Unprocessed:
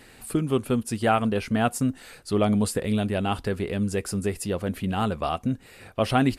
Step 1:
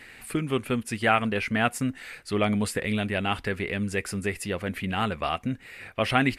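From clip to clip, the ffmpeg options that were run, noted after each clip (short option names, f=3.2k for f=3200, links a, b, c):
-af "equalizer=f=2.1k:w=1.3:g=13,volume=-3.5dB"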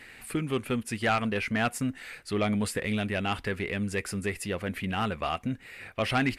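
-af "asoftclip=type=tanh:threshold=-16dB,volume=-1.5dB"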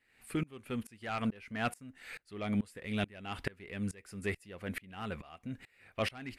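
-af "aeval=exprs='val(0)*pow(10,-28*if(lt(mod(-2.3*n/s,1),2*abs(-2.3)/1000),1-mod(-2.3*n/s,1)/(2*abs(-2.3)/1000),(mod(-2.3*n/s,1)-2*abs(-2.3)/1000)/(1-2*abs(-2.3)/1000))/20)':c=same"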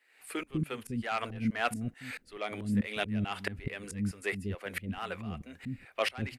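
-filter_complex "[0:a]acrossover=split=340[a][b];[a]adelay=200[c];[c][b]amix=inputs=2:normalize=0,volume=4.5dB"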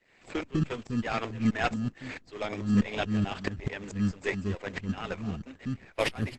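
-filter_complex "[0:a]aeval=exprs='if(lt(val(0),0),0.708*val(0),val(0))':c=same,asplit=2[a][b];[b]acrusher=samples=30:mix=1:aa=0.000001,volume=-5dB[c];[a][c]amix=inputs=2:normalize=0,volume=3dB" -ar 48000 -c:a libopus -b:a 12k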